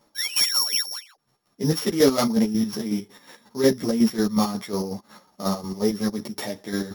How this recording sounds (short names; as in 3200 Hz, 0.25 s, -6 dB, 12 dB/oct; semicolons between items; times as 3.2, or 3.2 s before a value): a buzz of ramps at a fixed pitch in blocks of 8 samples; chopped level 5.5 Hz, depth 60%, duty 45%; a shimmering, thickened sound